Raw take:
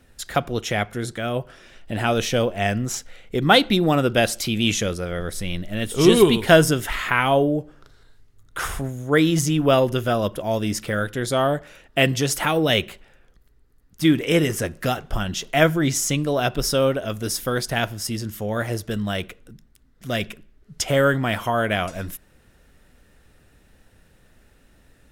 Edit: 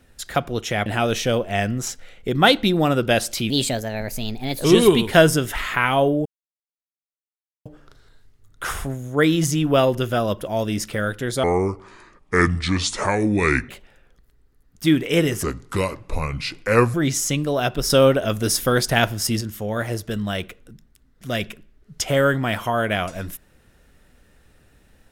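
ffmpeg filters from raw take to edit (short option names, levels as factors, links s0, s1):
-filter_complex "[0:a]asplit=11[s0][s1][s2][s3][s4][s5][s6][s7][s8][s9][s10];[s0]atrim=end=0.862[s11];[s1]atrim=start=1.928:end=4.574[s12];[s2]atrim=start=4.57:end=5.99,asetpts=PTS-STARTPTS,asetrate=54684,aresample=44100[s13];[s3]atrim=start=5.986:end=7.6,asetpts=PTS-STARTPTS,afade=t=out:st=1.61:d=0.004:c=hsin,apad=pad_dur=1.4[s14];[s4]atrim=start=7.6:end=11.384,asetpts=PTS-STARTPTS,afade=t=in:d=0.004:c=hsin[s15];[s5]atrim=start=11.38:end=12.87,asetpts=PTS-STARTPTS,asetrate=29106,aresample=44100,atrim=end_sample=99559,asetpts=PTS-STARTPTS[s16];[s6]atrim=start=12.866:end=14.614[s17];[s7]atrim=start=14.61:end=15.74,asetpts=PTS-STARTPTS,asetrate=33075,aresample=44100[s18];[s8]atrim=start=15.736:end=16.702[s19];[s9]atrim=start=16.698:end=18.212,asetpts=PTS-STARTPTS,volume=1.78[s20];[s10]atrim=start=18.208[s21];[s11][s12]acrossfade=d=0.004:c1=hsin:c2=hsin[s22];[s22][s13]acrossfade=d=0.004:c1=hsin:c2=hsin[s23];[s14][s15]concat=n=2:v=0:a=1[s24];[s23][s24]acrossfade=d=0.004:c1=hsin:c2=hsin[s25];[s25][s16]acrossfade=d=0.004:c1=hsin:c2=hsin[s26];[s26][s17]acrossfade=d=0.004:c1=hsin:c2=hsin[s27];[s27][s18]acrossfade=d=0.004:c1=hsin:c2=hsin[s28];[s28][s19]acrossfade=d=0.004:c1=hsin:c2=hsin[s29];[s29][s20]acrossfade=d=0.004:c1=hsin:c2=hsin[s30];[s30][s21]acrossfade=d=0.004:c1=hsin:c2=hsin"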